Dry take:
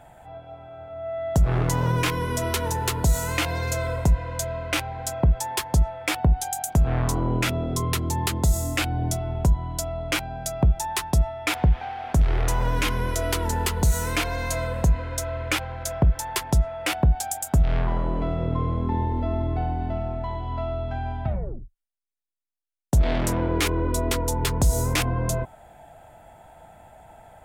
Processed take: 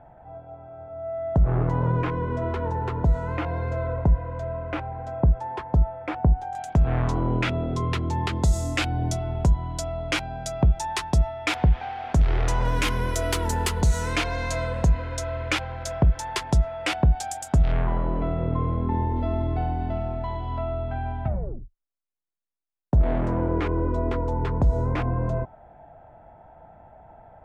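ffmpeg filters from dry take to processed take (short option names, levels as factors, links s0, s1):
-af "asetnsamples=n=441:p=0,asendcmd='6.55 lowpass f 3200;8.33 lowpass f 6500;12.65 lowpass f 11000;13.81 lowpass f 6300;17.72 lowpass f 2600;19.16 lowpass f 6100;20.58 lowpass f 2700;21.28 lowpass f 1300',lowpass=1200"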